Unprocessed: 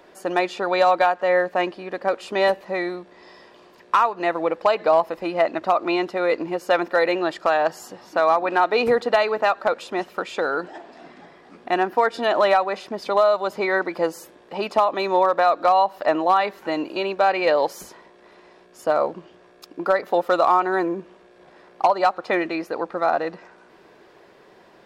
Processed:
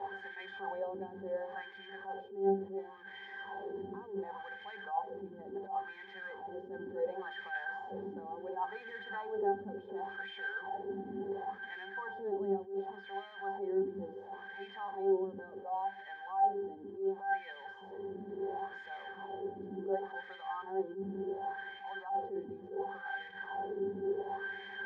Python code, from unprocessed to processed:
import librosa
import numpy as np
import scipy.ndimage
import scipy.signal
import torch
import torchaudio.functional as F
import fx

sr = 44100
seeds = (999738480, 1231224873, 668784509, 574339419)

y = fx.delta_mod(x, sr, bps=64000, step_db=-21.0)
y = fx.wow_flutter(y, sr, seeds[0], rate_hz=2.1, depth_cents=29.0)
y = fx.wah_lfo(y, sr, hz=0.7, low_hz=270.0, high_hz=2100.0, q=3.6)
y = fx.hum_notches(y, sr, base_hz=60, count=9)
y = fx.octave_resonator(y, sr, note='G', decay_s=0.23)
y = fx.rider(y, sr, range_db=4, speed_s=2.0)
y = fx.attack_slew(y, sr, db_per_s=140.0)
y = F.gain(torch.from_numpy(y), 8.5).numpy()